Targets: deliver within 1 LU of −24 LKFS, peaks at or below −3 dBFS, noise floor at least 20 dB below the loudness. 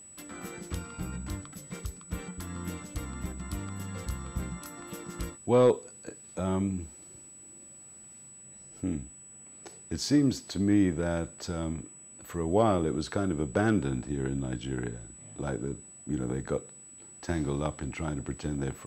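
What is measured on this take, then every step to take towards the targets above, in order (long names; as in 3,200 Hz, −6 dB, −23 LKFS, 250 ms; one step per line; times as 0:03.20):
interfering tone 7,900 Hz; level of the tone −48 dBFS; integrated loudness −32.0 LKFS; sample peak −13.0 dBFS; target loudness −24.0 LKFS
→ notch filter 7,900 Hz, Q 30
level +8 dB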